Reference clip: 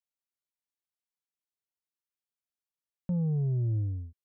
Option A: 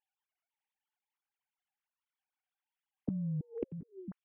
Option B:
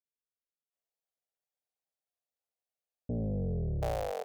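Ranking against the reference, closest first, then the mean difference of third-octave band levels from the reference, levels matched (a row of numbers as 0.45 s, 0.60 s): A, B; 8.0 dB, 14.5 dB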